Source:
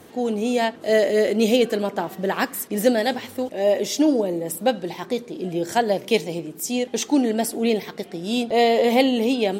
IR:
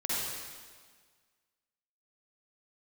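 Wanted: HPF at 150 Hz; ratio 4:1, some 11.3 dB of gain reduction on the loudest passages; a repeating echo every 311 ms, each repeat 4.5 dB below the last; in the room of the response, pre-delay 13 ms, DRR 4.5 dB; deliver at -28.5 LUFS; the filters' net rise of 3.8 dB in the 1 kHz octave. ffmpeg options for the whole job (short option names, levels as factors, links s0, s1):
-filter_complex "[0:a]highpass=150,equalizer=f=1000:t=o:g=6,acompressor=threshold=0.0562:ratio=4,aecho=1:1:311|622|933|1244|1555|1866|2177|2488|2799:0.596|0.357|0.214|0.129|0.0772|0.0463|0.0278|0.0167|0.01,asplit=2[s0][s1];[1:a]atrim=start_sample=2205,adelay=13[s2];[s1][s2]afir=irnorm=-1:irlink=0,volume=0.266[s3];[s0][s3]amix=inputs=2:normalize=0,volume=0.708"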